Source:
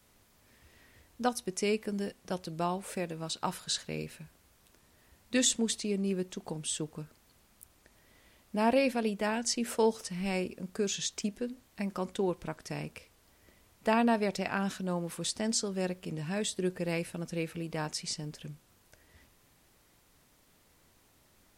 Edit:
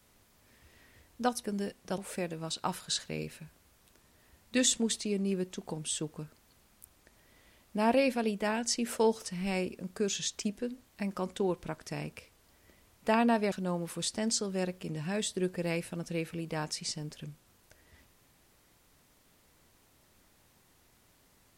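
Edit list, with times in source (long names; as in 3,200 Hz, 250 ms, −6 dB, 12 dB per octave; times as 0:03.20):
0:01.44–0:01.84: remove
0:02.38–0:02.77: remove
0:14.31–0:14.74: remove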